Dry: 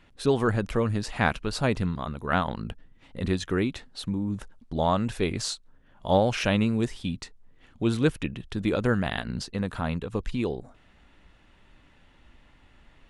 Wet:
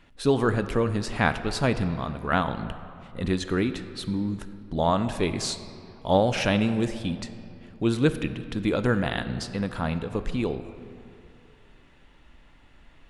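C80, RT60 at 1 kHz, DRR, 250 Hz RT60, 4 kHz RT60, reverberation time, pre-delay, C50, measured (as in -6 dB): 12.5 dB, 2.6 s, 10.0 dB, 2.6 s, 1.5 s, 2.7 s, 3 ms, 11.5 dB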